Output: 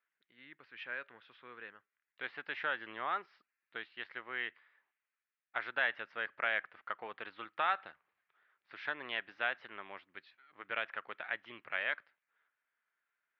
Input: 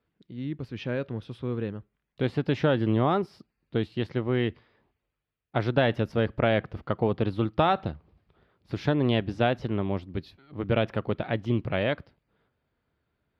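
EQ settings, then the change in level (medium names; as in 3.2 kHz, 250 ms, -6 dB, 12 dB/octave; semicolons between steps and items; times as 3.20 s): band-pass filter 1.7 kHz, Q 2; distance through air 280 m; tilt EQ +4 dB/octave; 0.0 dB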